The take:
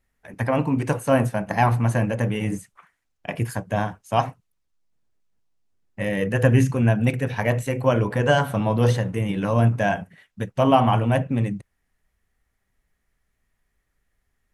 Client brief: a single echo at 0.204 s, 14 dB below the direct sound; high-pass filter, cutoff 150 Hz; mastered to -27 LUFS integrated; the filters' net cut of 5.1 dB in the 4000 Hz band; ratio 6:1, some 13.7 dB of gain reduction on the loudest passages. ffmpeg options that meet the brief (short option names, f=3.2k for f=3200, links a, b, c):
-af "highpass=150,equalizer=f=4k:t=o:g=-8.5,acompressor=threshold=-28dB:ratio=6,aecho=1:1:204:0.2,volume=6dB"